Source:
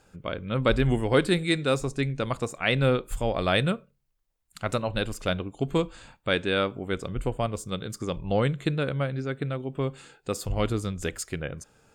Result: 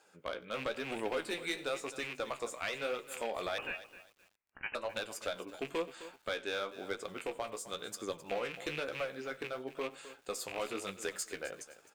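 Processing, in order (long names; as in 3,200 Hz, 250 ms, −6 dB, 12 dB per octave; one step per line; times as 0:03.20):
loose part that buzzes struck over −28 dBFS, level −25 dBFS
high-pass filter 450 Hz 12 dB per octave
downward compressor 5 to 1, threshold −29 dBFS, peak gain reduction 10.5 dB
asymmetric clip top −28 dBFS
slap from a distant wall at 16 metres, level −21 dB
flanger 1 Hz, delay 8.5 ms, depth 9.1 ms, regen +38%
0:03.58–0:04.75: voice inversion scrambler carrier 3,000 Hz
feedback echo at a low word length 260 ms, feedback 35%, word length 9 bits, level −14 dB
level +1 dB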